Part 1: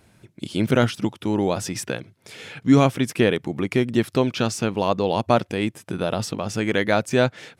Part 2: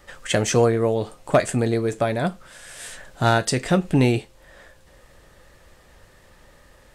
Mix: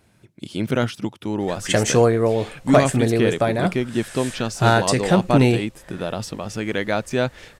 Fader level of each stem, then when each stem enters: −2.5, +2.0 decibels; 0.00, 1.40 seconds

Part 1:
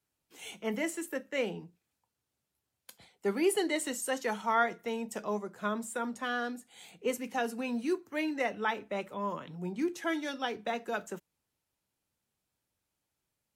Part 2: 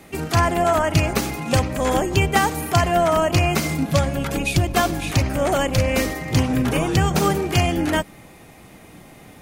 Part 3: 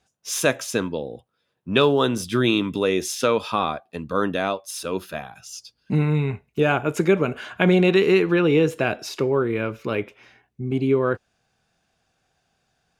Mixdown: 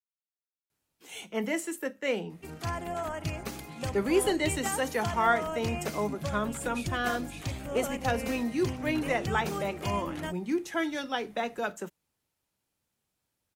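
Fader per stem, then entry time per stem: +2.5 dB, −16.0 dB, muted; 0.70 s, 2.30 s, muted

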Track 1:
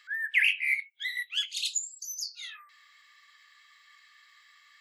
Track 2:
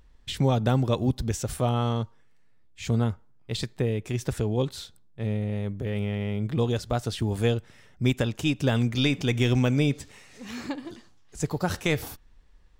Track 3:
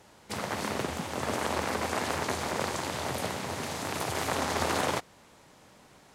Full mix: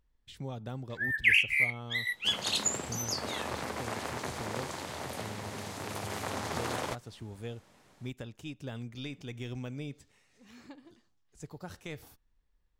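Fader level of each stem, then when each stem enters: +0.5, −17.0, −6.5 decibels; 0.90, 0.00, 1.95 seconds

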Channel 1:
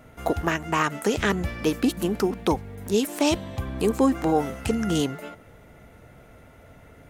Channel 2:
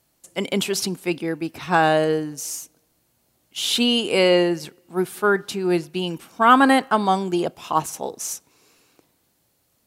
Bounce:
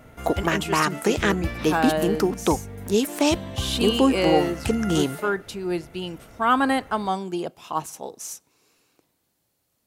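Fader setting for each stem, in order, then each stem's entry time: +1.5, −6.0 decibels; 0.00, 0.00 seconds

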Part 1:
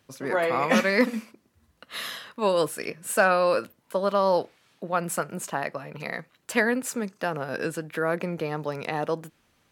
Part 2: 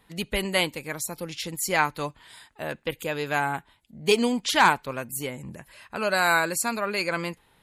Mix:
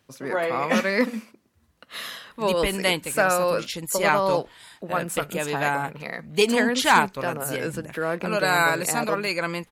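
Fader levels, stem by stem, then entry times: −0.5, +1.0 decibels; 0.00, 2.30 seconds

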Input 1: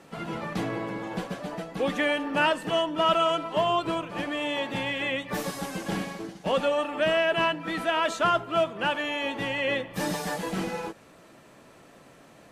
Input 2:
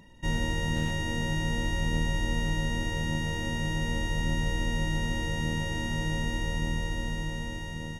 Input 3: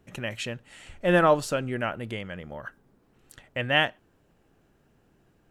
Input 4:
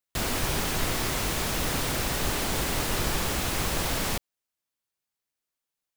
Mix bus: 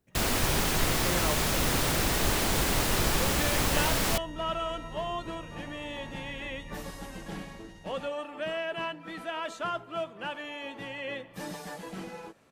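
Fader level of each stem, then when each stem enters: −9.5, −15.0, −14.5, +1.0 decibels; 1.40, 0.10, 0.00, 0.00 seconds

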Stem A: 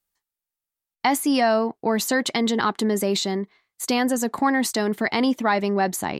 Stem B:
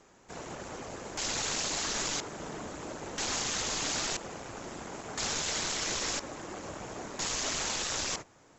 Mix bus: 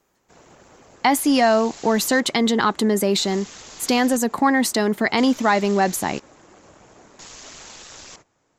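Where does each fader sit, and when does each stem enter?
+3.0, −8.0 decibels; 0.00, 0.00 seconds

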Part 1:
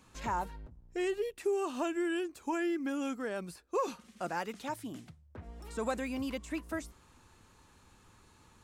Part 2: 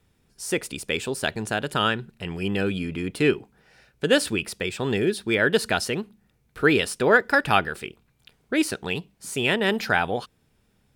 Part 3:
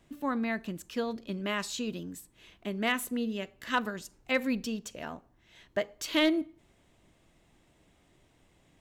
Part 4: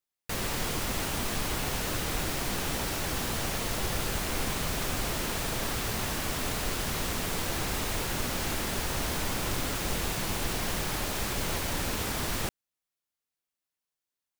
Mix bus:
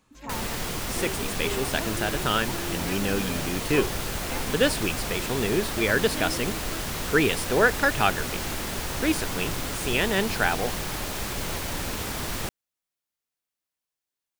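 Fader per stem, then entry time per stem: −4.5, −2.5, −11.0, +0.5 decibels; 0.00, 0.50, 0.00, 0.00 seconds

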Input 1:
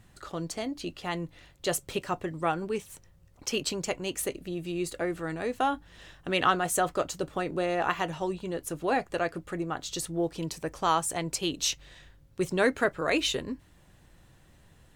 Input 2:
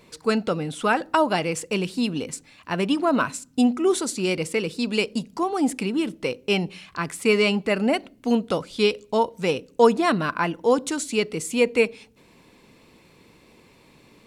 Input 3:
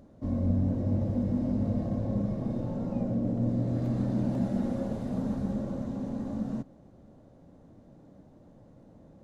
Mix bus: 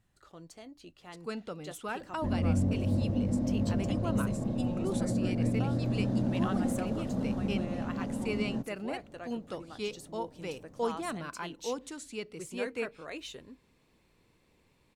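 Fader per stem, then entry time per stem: −15.5, −16.0, −1.0 decibels; 0.00, 1.00, 2.00 seconds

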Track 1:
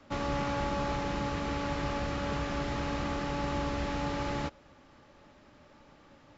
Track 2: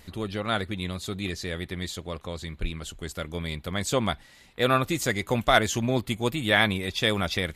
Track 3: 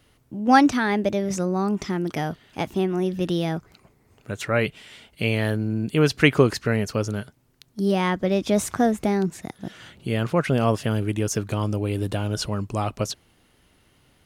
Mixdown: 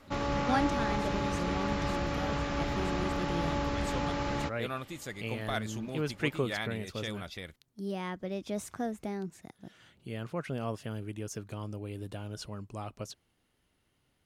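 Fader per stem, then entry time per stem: +0.5, −15.0, −14.5 decibels; 0.00, 0.00, 0.00 seconds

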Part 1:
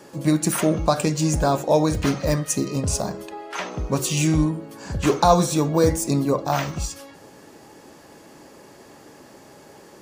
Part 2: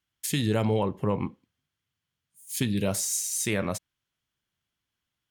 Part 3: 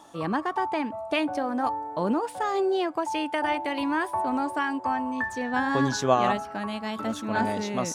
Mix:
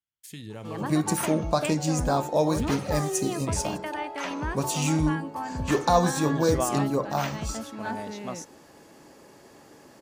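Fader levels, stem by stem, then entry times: −5.0, −14.5, −7.0 decibels; 0.65, 0.00, 0.50 seconds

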